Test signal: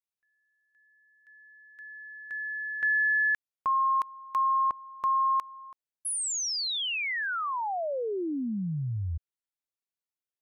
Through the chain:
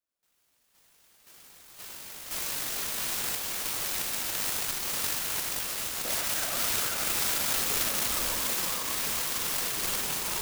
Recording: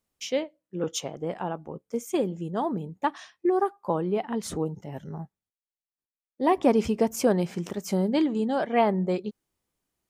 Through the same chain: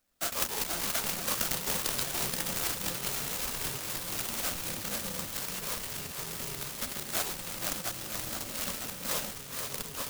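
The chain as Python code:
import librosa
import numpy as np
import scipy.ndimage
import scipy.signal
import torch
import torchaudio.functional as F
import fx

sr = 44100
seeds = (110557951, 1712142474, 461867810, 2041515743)

p1 = fx.bit_reversed(x, sr, seeds[0], block=128)
p2 = fx.tilt_shelf(p1, sr, db=6.0, hz=1100.0)
p3 = fx.over_compress(p2, sr, threshold_db=-37.0, ratio=-1.0)
p4 = fx.sample_hold(p3, sr, seeds[1], rate_hz=11000.0, jitter_pct=0)
p5 = fx.bass_treble(p4, sr, bass_db=-8, treble_db=12)
p6 = fx.fixed_phaser(p5, sr, hz=630.0, stages=8)
p7 = fx.echo_pitch(p6, sr, ms=82, semitones=-4, count=3, db_per_echo=-3.0)
p8 = p7 + fx.echo_thinned(p7, sr, ms=477, feedback_pct=55, hz=420.0, wet_db=-4.5, dry=0)
y = fx.noise_mod_delay(p8, sr, seeds[2], noise_hz=5300.0, depth_ms=0.095)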